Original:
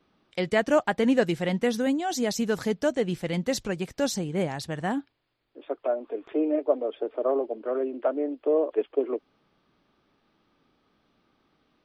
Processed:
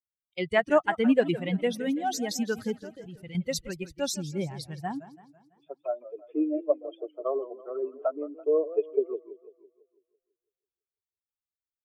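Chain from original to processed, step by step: expander on every frequency bin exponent 2; 2.75–3.35 s: level held to a coarse grid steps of 22 dB; 6.18–6.85 s: comb of notches 240 Hz; modulated delay 166 ms, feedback 49%, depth 167 cents, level -15.5 dB; trim +2.5 dB

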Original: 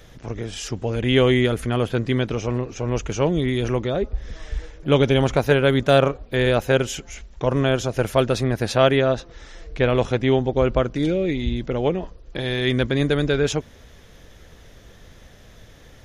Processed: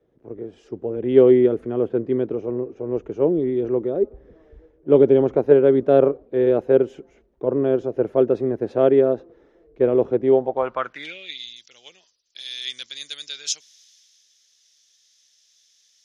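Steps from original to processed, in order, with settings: band-pass sweep 380 Hz -> 5.5 kHz, 10.22–11.51 s; three bands expanded up and down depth 40%; trim +6 dB

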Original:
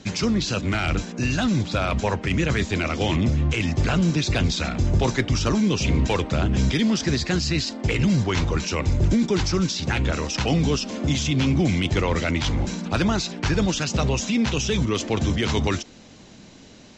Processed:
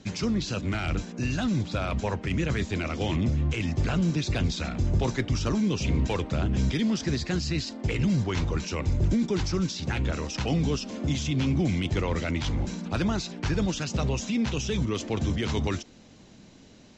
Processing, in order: bass shelf 480 Hz +3.5 dB; trim -7.5 dB

